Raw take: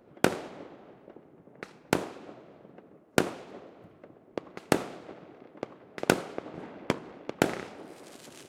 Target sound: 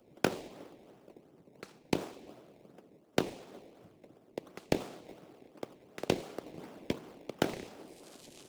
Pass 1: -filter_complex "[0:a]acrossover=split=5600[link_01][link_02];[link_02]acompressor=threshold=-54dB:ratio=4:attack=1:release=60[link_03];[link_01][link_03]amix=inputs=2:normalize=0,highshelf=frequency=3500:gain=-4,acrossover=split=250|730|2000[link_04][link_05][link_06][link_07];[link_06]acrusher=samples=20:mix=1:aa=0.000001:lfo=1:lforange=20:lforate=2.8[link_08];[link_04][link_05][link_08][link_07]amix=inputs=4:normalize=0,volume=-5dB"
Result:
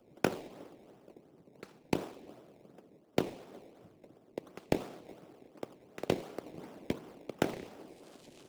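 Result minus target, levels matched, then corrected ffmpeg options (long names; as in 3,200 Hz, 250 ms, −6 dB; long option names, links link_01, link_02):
4,000 Hz band −3.0 dB
-filter_complex "[0:a]acrossover=split=5600[link_01][link_02];[link_02]acompressor=threshold=-54dB:ratio=4:attack=1:release=60[link_03];[link_01][link_03]amix=inputs=2:normalize=0,highshelf=frequency=3500:gain=5,acrossover=split=250|730|2000[link_04][link_05][link_06][link_07];[link_06]acrusher=samples=20:mix=1:aa=0.000001:lfo=1:lforange=20:lforate=2.8[link_08];[link_04][link_05][link_08][link_07]amix=inputs=4:normalize=0,volume=-5dB"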